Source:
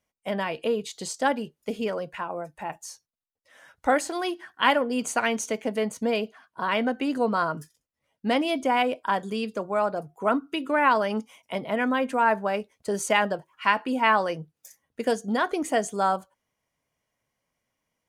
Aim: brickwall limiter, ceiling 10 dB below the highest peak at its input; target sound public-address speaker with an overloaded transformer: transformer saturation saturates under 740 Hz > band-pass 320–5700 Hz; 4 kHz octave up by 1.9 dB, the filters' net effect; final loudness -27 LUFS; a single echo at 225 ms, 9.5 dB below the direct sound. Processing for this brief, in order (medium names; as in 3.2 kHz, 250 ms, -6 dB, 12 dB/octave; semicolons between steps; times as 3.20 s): peaking EQ 4 kHz +3.5 dB; peak limiter -15 dBFS; delay 225 ms -9.5 dB; transformer saturation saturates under 740 Hz; band-pass 320–5700 Hz; trim +3 dB